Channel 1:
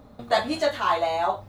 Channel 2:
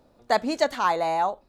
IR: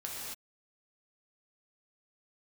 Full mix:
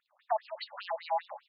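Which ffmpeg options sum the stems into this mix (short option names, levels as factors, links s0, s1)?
-filter_complex "[0:a]aeval=exprs='(mod(5.31*val(0)+1,2)-1)/5.31':c=same,volume=0.237,asplit=2[s0][s1];[s1]volume=0.158[s2];[1:a]bandreject=f=60:t=h:w=6,bandreject=f=120:t=h:w=6,bandreject=f=180:t=h:w=6,bandreject=f=240:t=h:w=6,bandreject=f=300:t=h:w=6,bandreject=f=360:t=h:w=6,bandreject=f=420:t=h:w=6,bandreject=f=480:t=h:w=6,bandreject=f=540:t=h:w=6,acrusher=bits=7:mix=0:aa=0.5,adelay=0.3,volume=1.19,asplit=3[s3][s4][s5];[s4]volume=0.0631[s6];[s5]apad=whole_len=65589[s7];[s0][s7]sidechaincompress=threshold=0.0501:ratio=8:attack=16:release=390[s8];[2:a]atrim=start_sample=2205[s9];[s2][s6]amix=inputs=2:normalize=0[s10];[s10][s9]afir=irnorm=-1:irlink=0[s11];[s8][s3][s11]amix=inputs=3:normalize=0,acrossover=split=170[s12][s13];[s13]acompressor=threshold=0.0562:ratio=6[s14];[s12][s14]amix=inputs=2:normalize=0,afftfilt=real='re*between(b*sr/1024,710*pow(3900/710,0.5+0.5*sin(2*PI*5*pts/sr))/1.41,710*pow(3900/710,0.5+0.5*sin(2*PI*5*pts/sr))*1.41)':imag='im*between(b*sr/1024,710*pow(3900/710,0.5+0.5*sin(2*PI*5*pts/sr))/1.41,710*pow(3900/710,0.5+0.5*sin(2*PI*5*pts/sr))*1.41)':win_size=1024:overlap=0.75"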